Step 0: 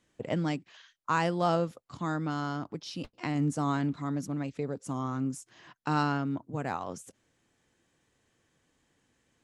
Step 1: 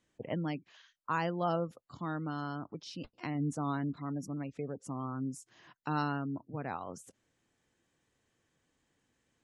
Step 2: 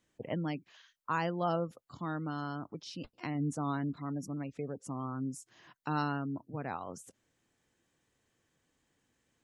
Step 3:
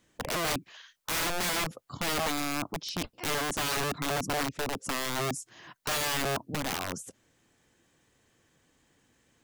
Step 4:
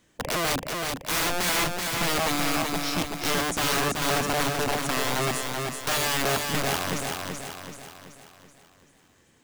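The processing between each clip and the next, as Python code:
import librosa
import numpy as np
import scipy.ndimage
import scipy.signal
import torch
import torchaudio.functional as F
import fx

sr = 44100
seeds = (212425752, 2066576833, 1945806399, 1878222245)

y1 = fx.spec_gate(x, sr, threshold_db=-30, keep='strong')
y1 = F.gain(torch.from_numpy(y1), -5.0).numpy()
y2 = fx.high_shelf(y1, sr, hz=8100.0, db=3.0)
y3 = (np.mod(10.0 ** (34.0 / 20.0) * y2 + 1.0, 2.0) - 1.0) / 10.0 ** (34.0 / 20.0)
y3 = F.gain(torch.from_numpy(y3), 9.0).numpy()
y4 = fx.echo_feedback(y3, sr, ms=381, feedback_pct=48, wet_db=-4.0)
y4 = F.gain(torch.from_numpy(y4), 4.0).numpy()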